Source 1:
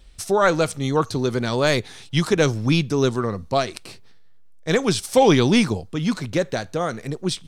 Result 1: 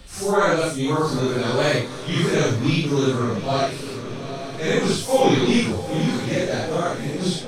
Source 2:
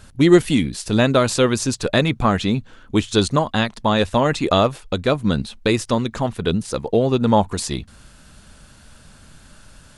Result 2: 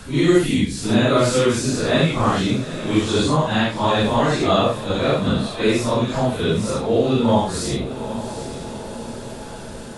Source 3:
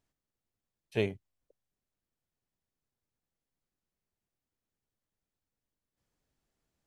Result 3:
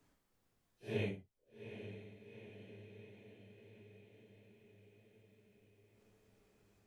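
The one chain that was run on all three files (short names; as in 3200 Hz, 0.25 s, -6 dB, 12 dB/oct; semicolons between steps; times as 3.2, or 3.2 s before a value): phase scrambler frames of 0.2 s; diffused feedback echo 0.815 s, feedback 51%, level -15 dB; three-band squash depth 40%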